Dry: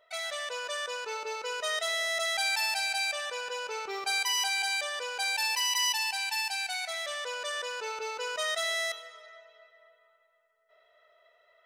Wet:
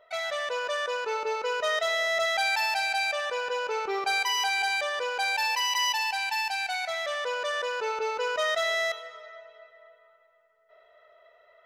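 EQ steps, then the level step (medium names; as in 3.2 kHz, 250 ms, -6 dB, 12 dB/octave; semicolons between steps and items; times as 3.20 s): treble shelf 2.6 kHz -11.5 dB; peaking EQ 9.1 kHz -9 dB 0.29 oct; +8.0 dB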